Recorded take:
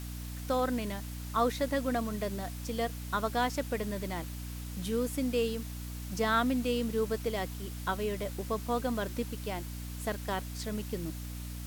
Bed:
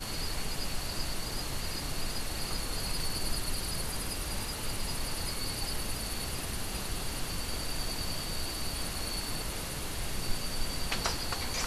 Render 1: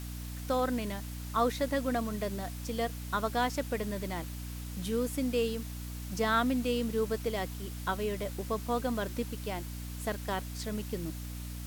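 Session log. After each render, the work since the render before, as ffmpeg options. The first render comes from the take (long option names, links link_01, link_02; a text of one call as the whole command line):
ffmpeg -i in.wav -af anull out.wav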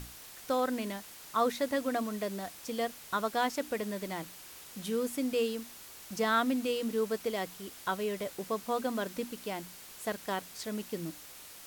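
ffmpeg -i in.wav -af "bandreject=frequency=60:width_type=h:width=6,bandreject=frequency=120:width_type=h:width=6,bandreject=frequency=180:width_type=h:width=6,bandreject=frequency=240:width_type=h:width=6,bandreject=frequency=300:width_type=h:width=6" out.wav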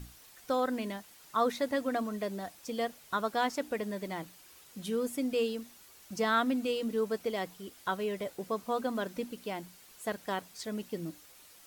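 ffmpeg -i in.wav -af "afftdn=noise_reduction=8:noise_floor=-50" out.wav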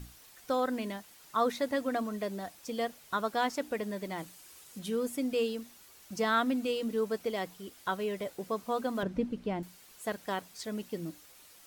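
ffmpeg -i in.wav -filter_complex "[0:a]asettb=1/sr,asplit=3[link_01][link_02][link_03];[link_01]atrim=end=4.184[link_04];[link_02]atrim=start=4.18:end=4.79,asetpts=PTS-STARTPTS,afade=type=in:duration=0.004:curve=qsin,afade=type=out:start_time=0.606:duration=0.004:curve=qsin,equalizer=frequency=8800:width=0.84:gain=5[link_05];[link_03]atrim=start=4.786[link_06];[link_04][link_05]acrossfade=duration=0.004:curve1=hsin:curve2=qsin[link_07];[link_07][link_06]acrossfade=duration=0.004:curve1=qsin:curve2=hsin,asettb=1/sr,asplit=3[link_08][link_09][link_10];[link_08]atrim=end=9.034[link_11];[link_09]atrim=start=9.03:end=9.63,asetpts=PTS-STARTPTS,afade=type=in:duration=0.004:curve=qsin,afade=type=out:start_time=0.596:duration=0.004:curve=qsin,aemphasis=mode=reproduction:type=riaa[link_12];[link_10]atrim=start=9.626[link_13];[link_11][link_12]acrossfade=duration=0.004:curve1=hsin:curve2=qsin[link_14];[link_14][link_13]acrossfade=duration=0.004:curve1=qsin:curve2=hsin" out.wav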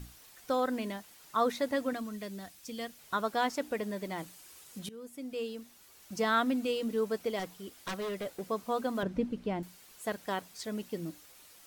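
ffmpeg -i in.wav -filter_complex "[0:a]asettb=1/sr,asplit=3[link_01][link_02][link_03];[link_01]atrim=end=1.934[link_04];[link_02]atrim=start=1.93:end=2.99,asetpts=PTS-STARTPTS,afade=type=in:duration=0.004:curve=qsin,afade=type=out:start_time=1.056:duration=0.004:curve=qsin,equalizer=frequency=670:width_type=o:width=2.3:gain=-9.5[link_05];[link_03]atrim=start=2.986[link_06];[link_04][link_05]acrossfade=duration=0.004:curve1=hsin:curve2=qsin[link_07];[link_07][link_06]acrossfade=duration=0.004:curve1=qsin:curve2=hsin,asettb=1/sr,asplit=3[link_08][link_09][link_10];[link_08]atrim=end=7.394[link_11];[link_09]atrim=start=7.39:end=8.41,asetpts=PTS-STARTPTS,afade=type=in:duration=0.004:curve=qsin,afade=type=out:start_time=1.016:duration=0.004:curve=qsin,aeval=exprs='0.0282*(abs(mod(val(0)/0.0282+3,4)-2)-1)':channel_layout=same[link_12];[link_10]atrim=start=8.406[link_13];[link_11][link_12]acrossfade=duration=0.004:curve1=hsin:curve2=qsin[link_14];[link_14][link_13]acrossfade=duration=0.004:curve1=qsin:curve2=hsin,asplit=2[link_15][link_16];[link_15]atrim=end=4.89,asetpts=PTS-STARTPTS,afade=type=out:start_time=4.886:duration=0.004:curve=hsin:silence=0.11885[link_17];[link_16]atrim=start=4.89,asetpts=PTS-STARTPTS,afade=type=in:duration=1.3:silence=0.11885[link_18];[link_17][link_18]concat=n=2:v=0:a=1" out.wav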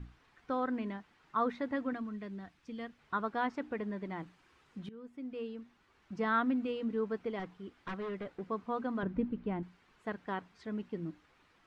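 ffmpeg -i in.wav -af "lowpass=1800,equalizer=frequency=590:width=1.8:gain=-8" out.wav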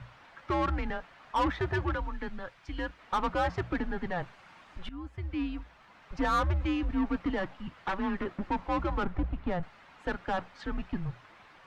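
ffmpeg -i in.wav -filter_complex "[0:a]asplit=2[link_01][link_02];[link_02]highpass=frequency=720:poles=1,volume=21dB,asoftclip=type=tanh:threshold=-19.5dB[link_03];[link_01][link_03]amix=inputs=2:normalize=0,lowpass=frequency=2600:poles=1,volume=-6dB,afreqshift=-180" out.wav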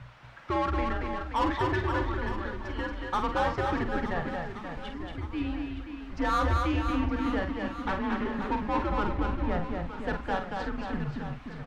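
ffmpeg -i in.wav -filter_complex "[0:a]asplit=2[link_01][link_02];[link_02]adelay=48,volume=-7.5dB[link_03];[link_01][link_03]amix=inputs=2:normalize=0,aecho=1:1:230|529|917.7|1423|2080:0.631|0.398|0.251|0.158|0.1" out.wav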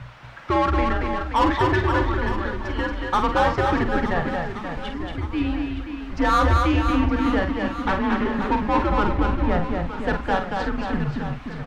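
ffmpeg -i in.wav -af "volume=8dB" out.wav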